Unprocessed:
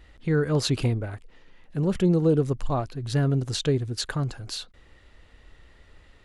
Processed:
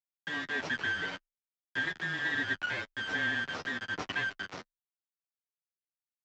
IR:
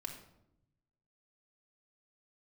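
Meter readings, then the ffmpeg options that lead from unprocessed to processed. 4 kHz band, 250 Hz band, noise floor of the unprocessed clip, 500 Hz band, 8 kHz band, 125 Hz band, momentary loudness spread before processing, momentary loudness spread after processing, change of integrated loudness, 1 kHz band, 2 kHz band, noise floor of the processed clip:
−4.5 dB, −17.5 dB, −55 dBFS, −18.5 dB, −15.5 dB, −24.5 dB, 14 LU, 8 LU, −7.5 dB, −5.0 dB, +10.0 dB, below −85 dBFS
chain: -af "afftfilt=real='real(if(lt(b,272),68*(eq(floor(b/68),0)*3+eq(floor(b/68),1)*0+eq(floor(b/68),2)*1+eq(floor(b/68),3)*2)+mod(b,68),b),0)':imag='imag(if(lt(b,272),68*(eq(floor(b/68),0)*3+eq(floor(b/68),1)*0+eq(floor(b/68),2)*1+eq(floor(b/68),3)*2)+mod(b,68),b),0)':win_size=2048:overlap=0.75,deesser=0.45,aecho=1:1:6.4:0.43,acompressor=threshold=-27dB:ratio=6,tremolo=f=1.2:d=0.46,aresample=16000,acrusher=bits=3:dc=4:mix=0:aa=0.000001,aresample=44100,afreqshift=-21,flanger=delay=9.6:depth=2.9:regen=-16:speed=0.7:shape=triangular,highpass=150,lowpass=2300,volume=8dB"

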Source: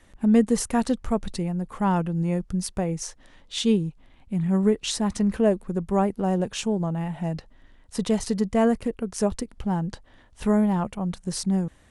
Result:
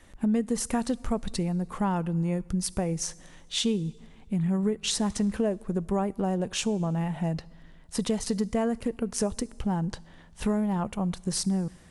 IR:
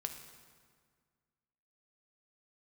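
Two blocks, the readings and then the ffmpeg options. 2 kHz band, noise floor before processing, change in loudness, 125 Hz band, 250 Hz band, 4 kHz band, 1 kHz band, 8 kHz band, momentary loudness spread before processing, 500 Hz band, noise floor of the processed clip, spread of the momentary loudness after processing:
−3.0 dB, −55 dBFS, −4.0 dB, −2.5 dB, −4.0 dB, +0.5 dB, −4.5 dB, +0.5 dB, 9 LU, −5.0 dB, −52 dBFS, 6 LU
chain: -filter_complex "[0:a]acompressor=threshold=-25dB:ratio=4,asplit=2[link_01][link_02];[1:a]atrim=start_sample=2205,highshelf=frequency=3900:gain=9.5[link_03];[link_02][link_03]afir=irnorm=-1:irlink=0,volume=-15dB[link_04];[link_01][link_04]amix=inputs=2:normalize=0"

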